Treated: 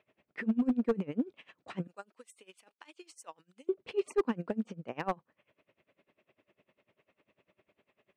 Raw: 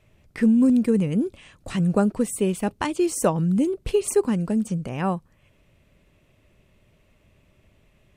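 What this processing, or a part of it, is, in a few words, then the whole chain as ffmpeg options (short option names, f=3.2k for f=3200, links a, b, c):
helicopter radio: -filter_complex "[0:a]asettb=1/sr,asplit=3[a][b][c];[a]atrim=end=1.874[d];[b]atrim=start=1.87:end=3.69,asetpts=PTS-STARTPTS,afade=t=in:d=0.004:c=qsin,afade=t=out:st=1.816:d=0.004:c=qsin,aderivative[e];[c]atrim=start=3.686[f];[d][e]acrossfade=d=0.004:c1=hsin:c2=qsin[g];[g][f]acrossfade=d=0.004:c1=qsin:c2=hsin,highpass=310,lowpass=2.8k,aeval=exprs='val(0)*pow(10,-24*(0.5-0.5*cos(2*PI*10*n/s))/20)':c=same,asoftclip=type=hard:threshold=-21.5dB"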